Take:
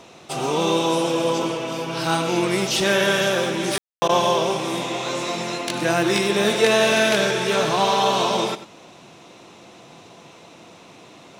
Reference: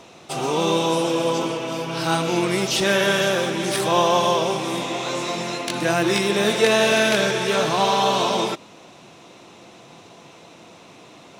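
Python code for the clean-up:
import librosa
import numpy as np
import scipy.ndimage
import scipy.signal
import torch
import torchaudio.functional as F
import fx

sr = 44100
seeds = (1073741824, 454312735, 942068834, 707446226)

y = fx.fix_ambience(x, sr, seeds[0], print_start_s=8.9, print_end_s=9.4, start_s=3.78, end_s=4.02)
y = fx.fix_interpolate(y, sr, at_s=(4.08,), length_ms=10.0)
y = fx.fix_echo_inverse(y, sr, delay_ms=94, level_db=-14.0)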